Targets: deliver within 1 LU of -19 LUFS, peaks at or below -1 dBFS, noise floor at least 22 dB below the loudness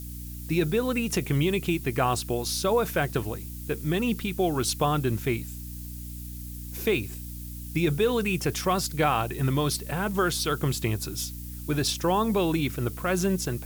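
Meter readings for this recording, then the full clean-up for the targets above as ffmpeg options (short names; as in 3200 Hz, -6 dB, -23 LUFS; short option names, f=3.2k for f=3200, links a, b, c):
hum 60 Hz; harmonics up to 300 Hz; hum level -36 dBFS; noise floor -38 dBFS; noise floor target -49 dBFS; loudness -27.0 LUFS; peak -11.0 dBFS; loudness target -19.0 LUFS
-> -af "bandreject=f=60:t=h:w=6,bandreject=f=120:t=h:w=6,bandreject=f=180:t=h:w=6,bandreject=f=240:t=h:w=6,bandreject=f=300:t=h:w=6"
-af "afftdn=nr=11:nf=-38"
-af "volume=8dB"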